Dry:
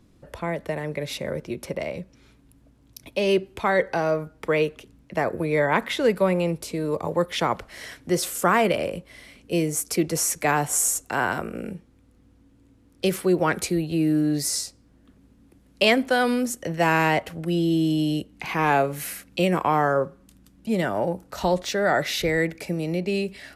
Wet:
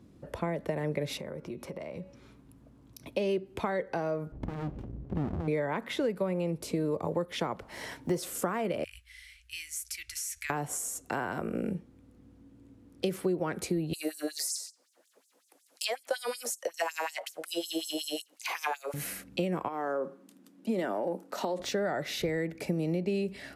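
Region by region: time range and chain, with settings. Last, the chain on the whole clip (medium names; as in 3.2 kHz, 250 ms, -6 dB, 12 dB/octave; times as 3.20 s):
1.17–3.09 s: peaking EQ 1.1 kHz +5 dB 0.68 oct + de-hum 280.5 Hz, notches 22 + compression 4:1, threshold -39 dBFS
4.32–5.48 s: tilt EQ -4.5 dB/octave + compression 2.5:1, threshold -28 dBFS + sliding maximum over 65 samples
7.64–8.18 s: block-companded coder 7-bit + peaking EQ 910 Hz +12 dB 0.26 oct
8.84–10.50 s: inverse Chebyshev band-stop 150–800 Hz, stop band 50 dB + compression 2:1, threshold -30 dBFS
13.93–18.94 s: LFO high-pass sine 5.4 Hz 490–7500 Hz + tone controls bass -14 dB, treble +10 dB
19.68–21.60 s: high-pass 230 Hz 24 dB/octave + compression 10:1, threshold -23 dBFS
whole clip: compression 10:1, threshold -28 dBFS; high-pass 130 Hz 6 dB/octave; tilt shelf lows +4.5 dB, about 730 Hz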